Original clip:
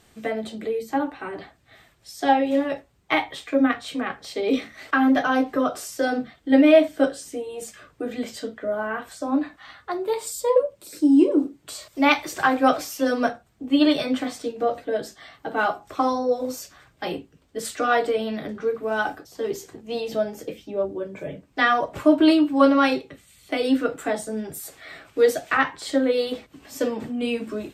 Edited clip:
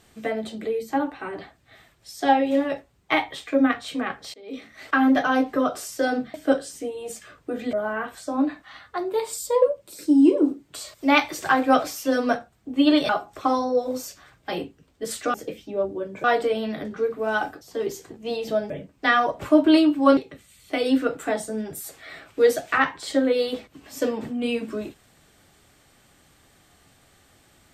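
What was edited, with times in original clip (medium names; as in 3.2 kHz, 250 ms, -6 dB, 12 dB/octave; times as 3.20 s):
4.34–4.85 s: fade in quadratic, from -21.5 dB
6.34–6.86 s: delete
8.25–8.67 s: delete
14.03–15.63 s: delete
20.34–21.24 s: move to 17.88 s
22.71–22.96 s: delete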